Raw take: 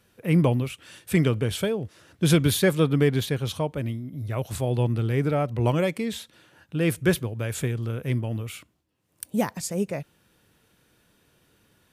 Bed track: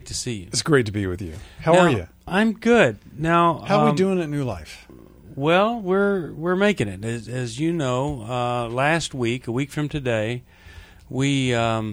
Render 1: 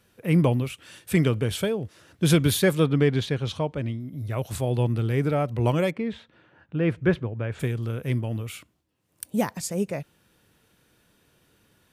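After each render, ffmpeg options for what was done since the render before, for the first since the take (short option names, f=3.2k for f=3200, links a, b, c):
-filter_complex "[0:a]asettb=1/sr,asplit=3[a][b][c];[a]atrim=end=2.864[d];[b]atrim=start=2.86:end=4,asetpts=PTS-STARTPTS,afade=t=in:d=0.004:c=qsin,afade=t=out:st=1.136:d=0.004:c=qsin,lowpass=5.9k[e];[c]atrim=start=3.996[f];[d][e]acrossfade=d=0.004:c1=hsin:c2=qsin[g];[g][f]acrossfade=d=0.004:c1=qsin:c2=hsin,asplit=3[h][i][j];[h]afade=t=out:st=5.9:d=0.02[k];[i]lowpass=2.1k,afade=t=in:st=5.9:d=0.02,afade=t=out:st=7.59:d=0.02[l];[j]afade=t=in:st=7.59:d=0.02[m];[k][l][m]amix=inputs=3:normalize=0"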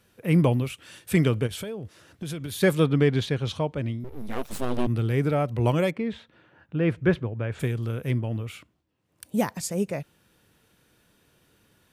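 -filter_complex "[0:a]asplit=3[a][b][c];[a]afade=t=out:st=1.46:d=0.02[d];[b]acompressor=threshold=-31dB:ratio=6:attack=3.2:release=140:knee=1:detection=peak,afade=t=in:st=1.46:d=0.02,afade=t=out:st=2.6:d=0.02[e];[c]afade=t=in:st=2.6:d=0.02[f];[d][e][f]amix=inputs=3:normalize=0,asettb=1/sr,asplit=3[g][h][i];[g]atrim=end=4.044[j];[h]atrim=start=4.04:end=4.87,asetpts=PTS-STARTPTS,afade=t=in:d=0.004:c=qsin,afade=t=out:st=0.826:d=0.004:c=qsin,aeval=exprs='abs(val(0))':c=same[k];[i]atrim=start=4.866[l];[j][k]acrossfade=d=0.004:c1=hsin:c2=qsin[m];[m][l]acrossfade=d=0.004:c1=qsin:c2=hsin,asettb=1/sr,asplit=3[n][o][p];[n]atrim=end=8.114[q];[o]atrim=start=8.11:end=9.26,asetpts=PTS-STARTPTS,afade=t=in:d=0.004:c=qsin,afade=t=out:st=1.146:d=0.004:c=qsin,equalizer=f=13k:w=0.33:g=-9.5[r];[p]atrim=start=9.256[s];[q][r]acrossfade=d=0.004:c1=hsin:c2=qsin[t];[t][s]acrossfade=d=0.004:c1=qsin:c2=hsin"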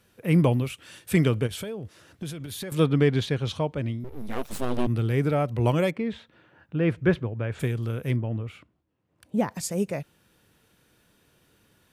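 -filter_complex "[0:a]asettb=1/sr,asplit=3[a][b][c];[a]atrim=end=2.294[d];[b]atrim=start=2.29:end=2.72,asetpts=PTS-STARTPTS,afade=t=in:d=0.004:c=qsin,afade=t=out:st=0.426:d=0.004:c=qsin,acompressor=threshold=-32dB:ratio=10:attack=3.2:release=140:knee=1:detection=peak[e];[c]atrim=start=2.716[f];[d][e]acrossfade=d=0.004:c1=hsin:c2=qsin[g];[g][f]acrossfade=d=0.004:c1=qsin:c2=hsin,asettb=1/sr,asplit=3[h][i][j];[h]atrim=end=8.164[k];[i]atrim=start=8.16:end=9.51,asetpts=PTS-STARTPTS,afade=t=in:d=0.004:c=qsin,afade=t=out:st=1.346:d=0.004:c=qsin,lowpass=f=1.7k:p=1[l];[j]atrim=start=9.506[m];[k][l]acrossfade=d=0.004:c1=hsin:c2=qsin[n];[n][m]acrossfade=d=0.004:c1=qsin:c2=hsin"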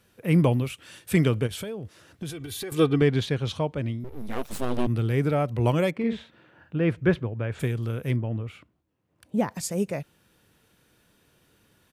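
-filter_complex "[0:a]asettb=1/sr,asplit=3[a][b][c];[a]atrim=end=2.294[d];[b]atrim=start=2.29:end=3.02,asetpts=PTS-STARTPTS,afade=t=in:d=0.004:c=qsin,afade=t=out:st=0.726:d=0.004:c=qsin,aecho=1:1:2.6:0.65,atrim=end_sample=32193[e];[c]atrim=start=3.016[f];[d][e]acrossfade=d=0.004:c1=hsin:c2=qsin[g];[g][f]acrossfade=d=0.004:c1=qsin:c2=hsin,asplit=3[h][i][j];[h]afade=t=out:st=5.98:d=0.02[k];[i]asplit=2[l][m];[m]adelay=48,volume=-4dB[n];[l][n]amix=inputs=2:normalize=0,afade=t=in:st=5.98:d=0.02,afade=t=out:st=6.79:d=0.02[o];[j]afade=t=in:st=6.79:d=0.02[p];[k][o][p]amix=inputs=3:normalize=0"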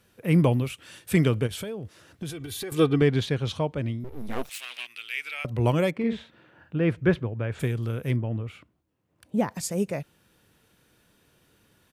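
-filter_complex "[0:a]asettb=1/sr,asplit=3[a][b][c];[a]atrim=end=4.494[d];[b]atrim=start=4.49:end=5.45,asetpts=PTS-STARTPTS,afade=t=in:d=0.004:c=qsin,afade=t=out:st=0.956:d=0.004:c=qsin,highpass=f=2.5k:t=q:w=3.6[e];[c]atrim=start=5.446[f];[d][e]acrossfade=d=0.004:c1=hsin:c2=qsin[g];[g][f]acrossfade=d=0.004:c1=qsin:c2=hsin"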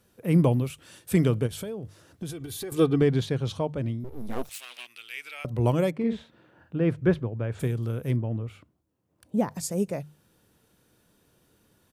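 -af "equalizer=f=2.3k:t=o:w=1.7:g=-6.5,bandreject=f=50:t=h:w=6,bandreject=f=100:t=h:w=6,bandreject=f=150:t=h:w=6"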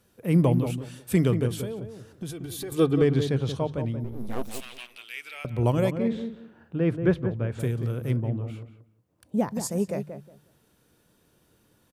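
-filter_complex "[0:a]asplit=2[a][b];[b]adelay=181,lowpass=f=1.3k:p=1,volume=-7.5dB,asplit=2[c][d];[d]adelay=181,lowpass=f=1.3k:p=1,volume=0.22,asplit=2[e][f];[f]adelay=181,lowpass=f=1.3k:p=1,volume=0.22[g];[a][c][e][g]amix=inputs=4:normalize=0"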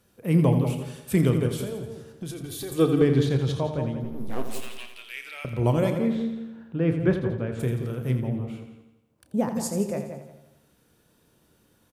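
-filter_complex "[0:a]asplit=2[a][b];[b]adelay=31,volume=-12dB[c];[a][c]amix=inputs=2:normalize=0,aecho=1:1:84|168|252|336|420|504|588:0.335|0.188|0.105|0.0588|0.0329|0.0184|0.0103"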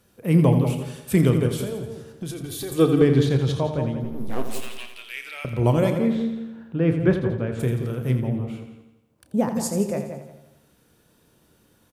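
-af "volume=3dB"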